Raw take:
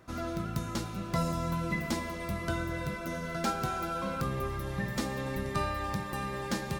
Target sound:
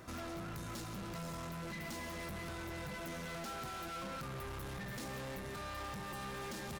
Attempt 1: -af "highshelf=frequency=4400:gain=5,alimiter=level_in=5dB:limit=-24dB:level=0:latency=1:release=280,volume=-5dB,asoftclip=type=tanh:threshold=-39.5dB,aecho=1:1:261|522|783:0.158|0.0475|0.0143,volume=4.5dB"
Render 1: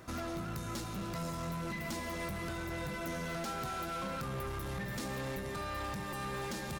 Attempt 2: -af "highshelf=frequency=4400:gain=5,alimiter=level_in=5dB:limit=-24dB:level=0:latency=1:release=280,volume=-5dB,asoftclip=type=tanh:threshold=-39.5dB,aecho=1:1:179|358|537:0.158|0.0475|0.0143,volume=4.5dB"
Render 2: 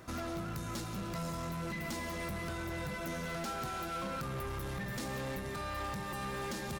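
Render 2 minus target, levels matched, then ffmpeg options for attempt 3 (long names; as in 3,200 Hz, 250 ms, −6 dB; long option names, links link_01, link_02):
soft clipping: distortion −4 dB
-af "highshelf=frequency=4400:gain=5,alimiter=level_in=5dB:limit=-24dB:level=0:latency=1:release=280,volume=-5dB,asoftclip=type=tanh:threshold=-46.5dB,aecho=1:1:179|358|537:0.158|0.0475|0.0143,volume=4.5dB"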